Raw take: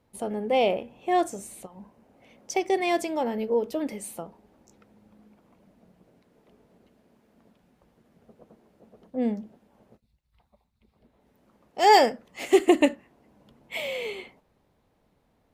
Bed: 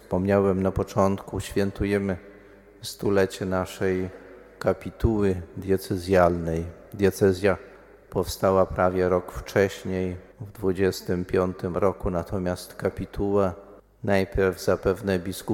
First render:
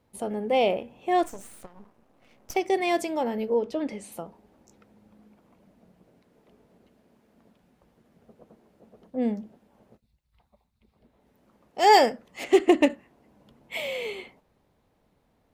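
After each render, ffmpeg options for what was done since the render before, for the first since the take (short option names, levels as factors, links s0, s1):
-filter_complex "[0:a]asettb=1/sr,asplit=3[s0][s1][s2];[s0]atrim=end=1.234[s3];[s1]atrim=start=1.23:end=2.56,asetpts=PTS-STARTPTS,afade=t=in:d=0.004:c=qsin,afade=t=out:st=1.326:d=0.004:c=qsin,aeval=exprs='max(val(0),0)':c=same[s4];[s2]atrim=start=2.556[s5];[s3][s4]acrossfade=d=0.004:c1=hsin:c2=qsin[s6];[s6][s5]acrossfade=d=0.004:c1=qsin:c2=hsin,asettb=1/sr,asplit=3[s7][s8][s9];[s7]atrim=end=3.584[s10];[s8]atrim=start=3.58:end=4.12,asetpts=PTS-STARTPTS,afade=t=in:d=0.004:c=qsin,afade=t=out:st=0.536:d=0.004:c=qsin,lowpass=6100[s11];[s9]atrim=start=4.116[s12];[s10][s11]acrossfade=d=0.004:c1=hsin:c2=qsin[s13];[s13][s12]acrossfade=d=0.004:c1=qsin:c2=hsin,asettb=1/sr,asplit=3[s14][s15][s16];[s14]atrim=end=12.444[s17];[s15]atrim=start=12.44:end=12.9,asetpts=PTS-STARTPTS,afade=t=in:d=0.004:c=qsin,afade=t=out:st=0.456:d=0.004:c=qsin,adynamicsmooth=sensitivity=4:basefreq=4100[s18];[s16]atrim=start=12.896[s19];[s17][s18]acrossfade=d=0.004:c1=hsin:c2=qsin[s20];[s20][s19]acrossfade=d=0.004:c1=qsin:c2=hsin"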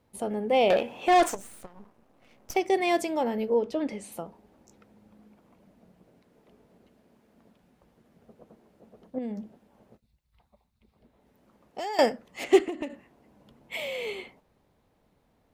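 -filter_complex "[0:a]asettb=1/sr,asplit=3[s0][s1][s2];[s0]atrim=end=0.704[s3];[s1]atrim=start=0.7:end=1.35,asetpts=PTS-STARTPTS,afade=t=in:d=0.004:c=qsin,afade=t=out:st=0.646:d=0.004:c=qsin,asplit=2[s4][s5];[s5]highpass=f=720:p=1,volume=10,asoftclip=type=tanh:threshold=0.237[s6];[s4][s6]amix=inputs=2:normalize=0,lowpass=f=7400:p=1,volume=0.501[s7];[s2]atrim=start=1.346[s8];[s3][s7]acrossfade=d=0.004:c1=hsin:c2=qsin[s9];[s9][s8]acrossfade=d=0.004:c1=qsin:c2=hsin,asettb=1/sr,asplit=3[s10][s11][s12];[s10]atrim=end=9.184[s13];[s11]atrim=start=9.18:end=11.99,asetpts=PTS-STARTPTS,afade=t=in:d=0.004:c=qsin,afade=t=out:st=2.806:d=0.004:c=qsin,acompressor=threshold=0.0316:ratio=10:attack=3.2:release=140:knee=1:detection=peak[s14];[s12]atrim=start=11.986[s15];[s13][s14]acrossfade=d=0.004:c1=hsin:c2=qsin[s16];[s16][s15]acrossfade=d=0.004:c1=qsin:c2=hsin,asettb=1/sr,asplit=3[s17][s18][s19];[s17]atrim=end=12.644[s20];[s18]atrim=start=12.64:end=14.07,asetpts=PTS-STARTPTS,afade=t=in:d=0.004:c=qsin,afade=t=out:st=1.426:d=0.004:c=qsin,acompressor=threshold=0.0355:ratio=10:attack=3.2:release=140:knee=1:detection=peak[s21];[s19]atrim=start=14.066[s22];[s20][s21]acrossfade=d=0.004:c1=hsin:c2=qsin[s23];[s23][s22]acrossfade=d=0.004:c1=qsin:c2=hsin"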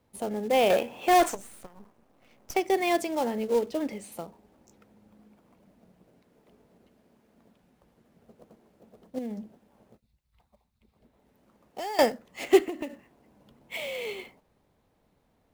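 -filter_complex "[0:a]aeval=exprs='0.473*(cos(1*acos(clip(val(0)/0.473,-1,1)))-cos(1*PI/2))+0.00841*(cos(7*acos(clip(val(0)/0.473,-1,1)))-cos(7*PI/2))':c=same,acrossover=split=470[s0][s1];[s1]acrusher=bits=3:mode=log:mix=0:aa=0.000001[s2];[s0][s2]amix=inputs=2:normalize=0"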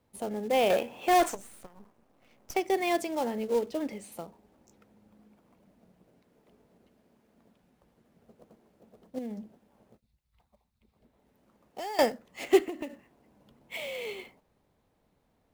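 -af "volume=0.75"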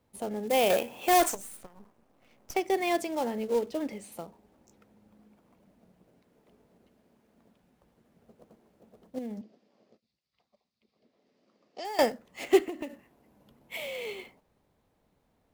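-filter_complex "[0:a]asettb=1/sr,asplit=3[s0][s1][s2];[s0]atrim=end=0.474[s3];[s1]atrim=start=0.47:end=1.57,asetpts=PTS-STARTPTS,afade=t=in:d=0.004:c=qsin,afade=t=out:st=1.096:d=0.004:c=qsin,highshelf=f=5900:g=10[s4];[s2]atrim=start=1.566[s5];[s3][s4]acrossfade=d=0.004:c1=hsin:c2=qsin[s6];[s6][s5]acrossfade=d=0.004:c1=qsin:c2=hsin,asettb=1/sr,asplit=3[s7][s8][s9];[s7]atrim=end=9.414[s10];[s8]atrim=start=9.41:end=11.85,asetpts=PTS-STARTPTS,afade=t=in:d=0.004:c=qsin,afade=t=out:st=2.436:d=0.004:c=qsin,highpass=250,equalizer=f=890:t=q:w=4:g=-9,equalizer=f=1500:t=q:w=4:g=-6,equalizer=f=4800:t=q:w=4:g=8,lowpass=f=6300:w=0.5412,lowpass=f=6300:w=1.3066[s11];[s9]atrim=start=11.846[s12];[s10][s11]acrossfade=d=0.004:c1=hsin:c2=qsin[s13];[s13][s12]acrossfade=d=0.004:c1=qsin:c2=hsin,asettb=1/sr,asplit=3[s14][s15][s16];[s14]atrim=end=12.884[s17];[s15]atrim=start=12.88:end=13.87,asetpts=PTS-STARTPTS,afade=t=in:d=0.004:c=qsin,afade=t=out:st=0.986:d=0.004:c=qsin,equalizer=f=12000:w=3.5:g=8[s18];[s16]atrim=start=13.866[s19];[s17][s18]acrossfade=d=0.004:c1=hsin:c2=qsin[s20];[s20][s19]acrossfade=d=0.004:c1=qsin:c2=hsin"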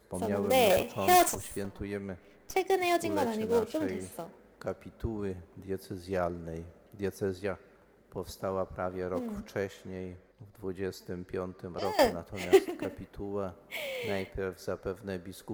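-filter_complex "[1:a]volume=0.224[s0];[0:a][s0]amix=inputs=2:normalize=0"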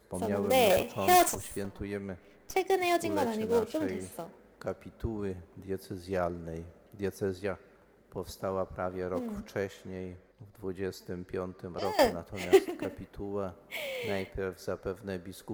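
-af anull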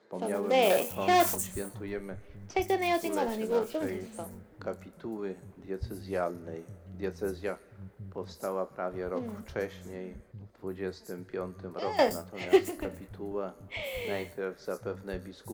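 -filter_complex "[0:a]asplit=2[s0][s1];[s1]adelay=27,volume=0.251[s2];[s0][s2]amix=inputs=2:normalize=0,acrossover=split=160|6000[s3][s4][s5];[s5]adelay=120[s6];[s3]adelay=780[s7];[s7][s4][s6]amix=inputs=3:normalize=0"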